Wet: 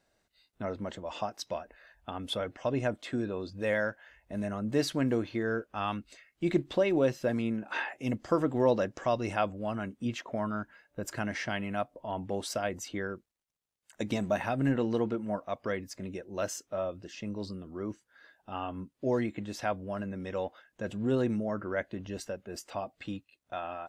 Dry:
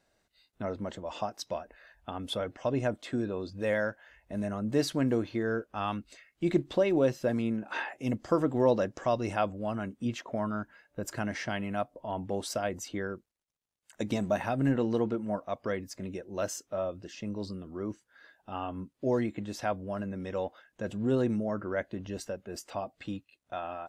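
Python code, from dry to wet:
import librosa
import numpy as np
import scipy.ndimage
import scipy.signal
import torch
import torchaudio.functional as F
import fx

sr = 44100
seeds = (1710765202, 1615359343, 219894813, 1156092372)

y = fx.dynamic_eq(x, sr, hz=2300.0, q=0.82, threshold_db=-50.0, ratio=4.0, max_db=3)
y = F.gain(torch.from_numpy(y), -1.0).numpy()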